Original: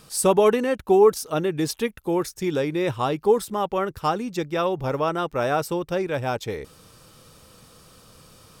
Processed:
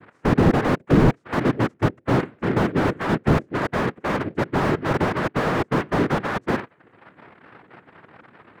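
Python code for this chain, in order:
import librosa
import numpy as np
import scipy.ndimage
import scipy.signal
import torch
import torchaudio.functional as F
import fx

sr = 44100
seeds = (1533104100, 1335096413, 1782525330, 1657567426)

y = fx.lowpass_res(x, sr, hz=500.0, q=4.9)
y = fx.hum_notches(y, sr, base_hz=60, count=6)
y = fx.dereverb_blind(y, sr, rt60_s=0.57)
y = fx.noise_vocoder(y, sr, seeds[0], bands=3)
y = fx.slew_limit(y, sr, full_power_hz=82.0)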